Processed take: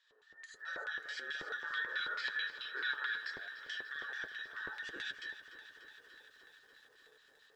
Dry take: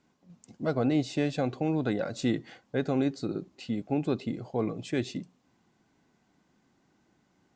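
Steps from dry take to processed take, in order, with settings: band inversion scrambler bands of 2000 Hz; HPF 320 Hz 24 dB/oct, from 4.96 s 59 Hz; non-linear reverb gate 0.14 s rising, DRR -6 dB; LFO band-pass square 4.6 Hz 430–3600 Hz; 1.64–3.3 spectral gain 850–5400 Hz +12 dB; compressor 2.5:1, threshold -52 dBFS, peak gain reduction 22.5 dB; flange 1.4 Hz, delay 5.9 ms, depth 3.3 ms, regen -42%; lo-fi delay 0.294 s, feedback 80%, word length 13-bit, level -13.5 dB; gain +9.5 dB

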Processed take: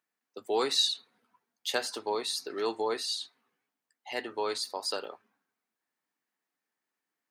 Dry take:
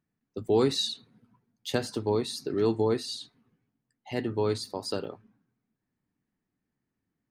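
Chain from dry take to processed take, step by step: HPF 700 Hz 12 dB/oct; gain +3.5 dB

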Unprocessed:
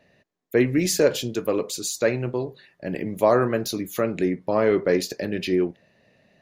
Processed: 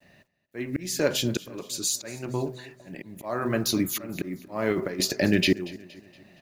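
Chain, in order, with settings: expander -57 dBFS; bell 470 Hz -9 dB 0.43 oct; de-hum 126.7 Hz, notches 5; auto swell 0.751 s; 4.09–5 negative-ratio compressor -33 dBFS, ratio -0.5; companded quantiser 8-bit; feedback echo 0.234 s, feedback 46%, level -19.5 dB; gain +7.5 dB

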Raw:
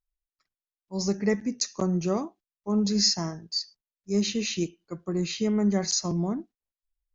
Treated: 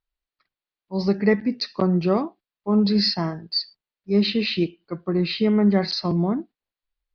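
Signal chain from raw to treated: elliptic low-pass 4500 Hz, stop band 40 dB; low shelf 63 Hz -8 dB; gain +7.5 dB

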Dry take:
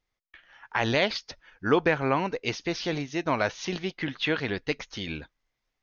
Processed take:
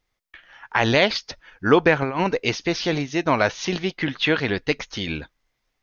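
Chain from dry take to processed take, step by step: 2.02–2.47 negative-ratio compressor -28 dBFS, ratio -0.5; gain +6.5 dB

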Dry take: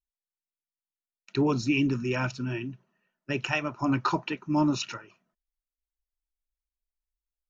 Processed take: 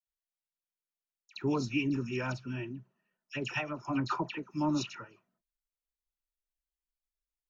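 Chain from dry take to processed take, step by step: dispersion lows, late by 71 ms, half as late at 2000 Hz; gain -6 dB

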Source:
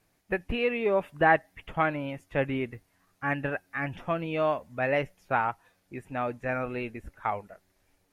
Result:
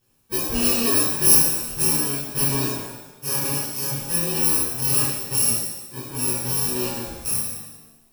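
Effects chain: FFT order left unsorted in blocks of 64 samples; shimmer reverb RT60 1 s, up +7 st, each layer -8 dB, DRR -9.5 dB; gain -3 dB

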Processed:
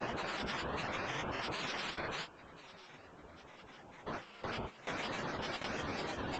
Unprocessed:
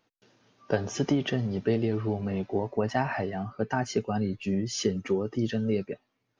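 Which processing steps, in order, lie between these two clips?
spectral limiter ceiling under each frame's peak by 25 dB; Paulstretch 5×, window 1.00 s, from 2.77; on a send: delay with a stepping band-pass 0.372 s, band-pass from 910 Hz, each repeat 0.7 oct, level -10.5 dB; on the sum: gate with hold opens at -20 dBFS; grains, spray 17 ms, pitch spread up and down by 12 st; compressor 2:1, threshold -42 dBFS, peak gain reduction 9 dB; gain -1 dB; A-law 128 kbps 16000 Hz

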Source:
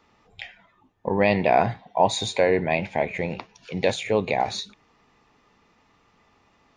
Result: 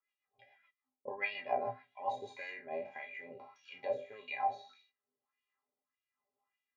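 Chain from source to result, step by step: spectral trails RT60 0.47 s; gate -54 dBFS, range -13 dB; metallic resonator 120 Hz, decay 0.22 s, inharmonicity 0.03; LFO band-pass sine 1.7 Hz 510–2900 Hz; rotary speaker horn 7 Hz, later 1.1 Hz, at 1.99; gain +1 dB

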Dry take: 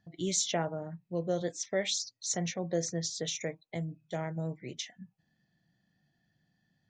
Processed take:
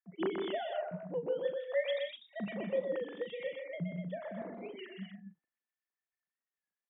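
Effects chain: sine-wave speech; gate with hold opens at -60 dBFS; doubler 39 ms -12 dB; tapped delay 0.124/0.163/0.186/0.247 s -5.5/-12.5/-13/-6.5 dB; record warp 33 1/3 rpm, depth 100 cents; gain -5 dB

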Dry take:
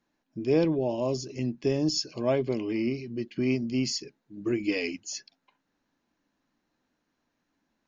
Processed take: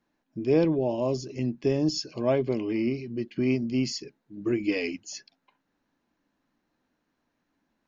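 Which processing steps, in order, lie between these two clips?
high shelf 4400 Hz -7 dB; gain +1.5 dB

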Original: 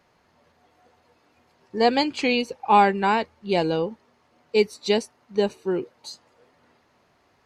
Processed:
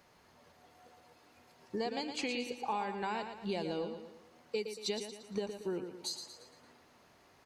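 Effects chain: high shelf 5900 Hz +8.5 dB; compressor 10:1, threshold -32 dBFS, peak gain reduction 20 dB; on a send: feedback echo 0.115 s, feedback 46%, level -8 dB; on the sum: gain -2 dB

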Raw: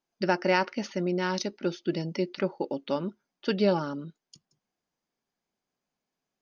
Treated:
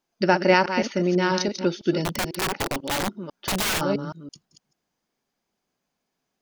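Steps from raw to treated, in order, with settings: reverse delay 0.165 s, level -8 dB; 2.04–3.81 wrapped overs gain 25.5 dB; gain +6 dB

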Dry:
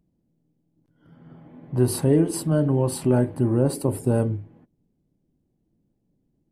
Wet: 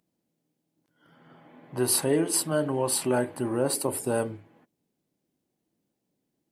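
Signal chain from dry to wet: HPF 1300 Hz 6 dB/oct; gain +6.5 dB

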